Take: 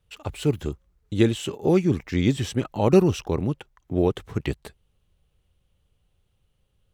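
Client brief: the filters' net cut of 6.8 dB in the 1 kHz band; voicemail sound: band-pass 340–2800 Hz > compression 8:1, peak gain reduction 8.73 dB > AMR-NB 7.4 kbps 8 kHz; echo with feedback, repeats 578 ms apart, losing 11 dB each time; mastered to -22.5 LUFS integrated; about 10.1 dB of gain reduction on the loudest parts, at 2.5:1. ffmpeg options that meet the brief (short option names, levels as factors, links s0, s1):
-af "equalizer=f=1000:t=o:g=-9,acompressor=threshold=0.0398:ratio=2.5,highpass=340,lowpass=2800,aecho=1:1:578|1156|1734:0.282|0.0789|0.0221,acompressor=threshold=0.02:ratio=8,volume=9.44" -ar 8000 -c:a libopencore_amrnb -b:a 7400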